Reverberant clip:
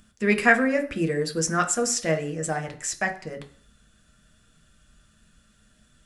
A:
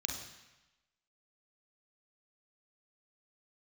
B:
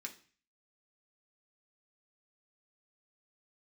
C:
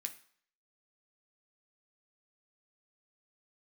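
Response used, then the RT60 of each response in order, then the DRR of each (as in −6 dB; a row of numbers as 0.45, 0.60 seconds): C; 1.0, 0.40, 0.55 seconds; 1.5, 0.5, 5.0 decibels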